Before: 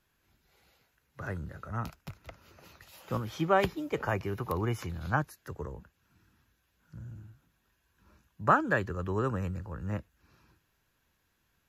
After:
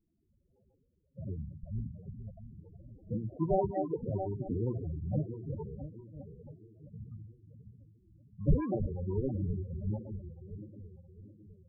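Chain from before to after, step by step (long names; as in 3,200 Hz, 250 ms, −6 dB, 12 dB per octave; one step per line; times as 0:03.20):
feedback delay that plays each chunk backwards 334 ms, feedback 67%, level −9 dB
mains-hum notches 60/120/180 Hz
decimation without filtering 33×
spectral peaks only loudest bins 8
wow of a warped record 33 1/3 rpm, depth 100 cents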